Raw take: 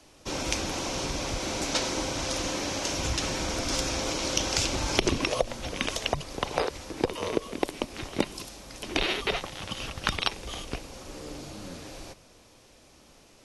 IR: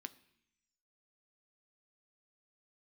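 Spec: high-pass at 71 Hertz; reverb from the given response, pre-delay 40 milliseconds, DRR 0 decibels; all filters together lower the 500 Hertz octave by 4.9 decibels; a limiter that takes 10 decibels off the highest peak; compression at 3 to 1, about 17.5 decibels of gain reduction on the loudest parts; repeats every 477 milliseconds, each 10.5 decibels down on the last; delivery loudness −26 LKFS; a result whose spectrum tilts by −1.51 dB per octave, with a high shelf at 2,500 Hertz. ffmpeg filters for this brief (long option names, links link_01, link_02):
-filter_complex "[0:a]highpass=71,equalizer=frequency=500:width_type=o:gain=-6.5,highshelf=frequency=2500:gain=5.5,acompressor=threshold=-44dB:ratio=3,alimiter=level_in=5dB:limit=-24dB:level=0:latency=1,volume=-5dB,aecho=1:1:477|954|1431:0.299|0.0896|0.0269,asplit=2[link_01][link_02];[1:a]atrim=start_sample=2205,adelay=40[link_03];[link_02][link_03]afir=irnorm=-1:irlink=0,volume=4.5dB[link_04];[link_01][link_04]amix=inputs=2:normalize=0,volume=13.5dB"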